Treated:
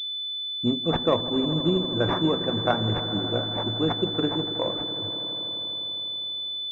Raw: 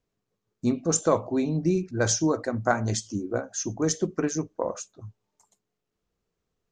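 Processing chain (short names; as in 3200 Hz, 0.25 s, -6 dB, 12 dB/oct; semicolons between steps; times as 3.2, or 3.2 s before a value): swelling echo 81 ms, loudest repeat 5, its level -17 dB; pulse-width modulation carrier 3500 Hz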